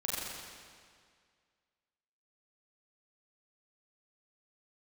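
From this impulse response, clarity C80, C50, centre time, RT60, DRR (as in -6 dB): -2.0 dB, -3.0 dB, 143 ms, 2.0 s, -7.0 dB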